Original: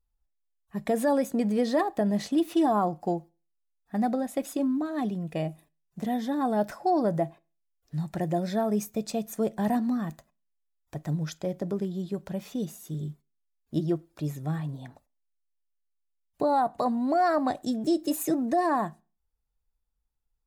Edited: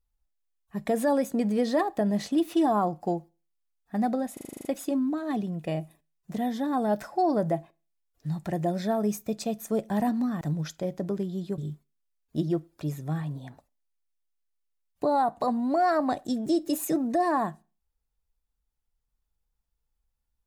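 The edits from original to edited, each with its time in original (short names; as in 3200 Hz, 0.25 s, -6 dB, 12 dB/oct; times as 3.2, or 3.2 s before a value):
4.33 stutter 0.04 s, 9 plays
10.09–11.03 cut
12.2–12.96 cut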